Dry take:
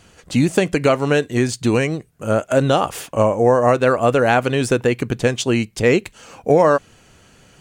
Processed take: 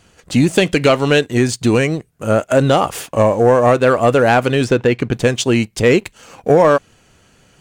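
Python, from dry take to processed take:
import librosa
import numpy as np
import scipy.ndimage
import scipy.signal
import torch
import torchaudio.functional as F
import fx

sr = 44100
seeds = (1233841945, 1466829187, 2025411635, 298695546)

y = fx.peak_eq(x, sr, hz=3400.0, db=8.0, octaves=0.8, at=(0.56, 1.21))
y = fx.lowpass(y, sr, hz=5100.0, slope=12, at=(4.64, 5.13))
y = fx.leveller(y, sr, passes=1)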